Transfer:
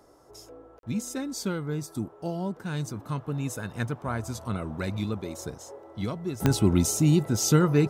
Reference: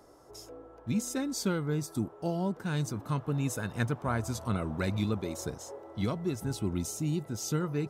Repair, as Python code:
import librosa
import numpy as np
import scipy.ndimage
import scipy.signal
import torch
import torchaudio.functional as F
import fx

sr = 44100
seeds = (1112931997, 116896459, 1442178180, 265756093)

y = fx.fix_declick_ar(x, sr, threshold=10.0)
y = fx.fix_interpolate(y, sr, at_s=(0.79,), length_ms=42.0)
y = fx.fix_level(y, sr, at_s=6.4, step_db=-10.5)